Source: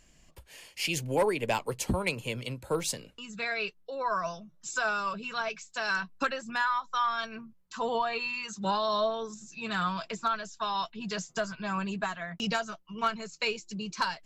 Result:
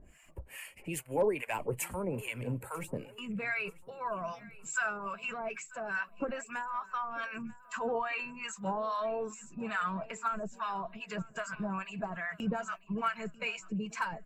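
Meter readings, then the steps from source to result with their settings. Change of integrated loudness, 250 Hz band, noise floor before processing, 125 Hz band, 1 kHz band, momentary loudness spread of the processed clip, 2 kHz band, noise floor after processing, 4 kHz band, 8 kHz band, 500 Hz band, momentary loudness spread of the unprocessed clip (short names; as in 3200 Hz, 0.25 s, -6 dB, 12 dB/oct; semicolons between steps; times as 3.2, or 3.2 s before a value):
-4.5 dB, -2.0 dB, -61 dBFS, -2.5 dB, -5.5 dB, 8 LU, -4.0 dB, -57 dBFS, -12.0 dB, -5.0 dB, -3.5 dB, 9 LU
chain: bin magnitudes rounded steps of 15 dB; band shelf 4600 Hz -16 dB 1.2 oct; in parallel at -2.5 dB: negative-ratio compressor -41 dBFS, ratio -1; on the sum: harmonic tremolo 2.4 Hz, depth 100%, crossover 850 Hz; hard clip -20.5 dBFS, distortion -43 dB; on a send: feedback echo 0.942 s, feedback 43%, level -21 dB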